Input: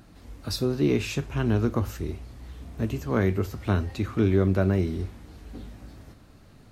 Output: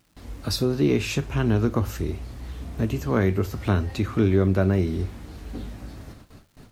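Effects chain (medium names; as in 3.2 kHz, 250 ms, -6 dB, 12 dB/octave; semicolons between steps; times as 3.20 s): gate with hold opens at -42 dBFS; in parallel at 0 dB: compression, threshold -31 dBFS, peak gain reduction 14 dB; on the sum: crackle 490 per s -52 dBFS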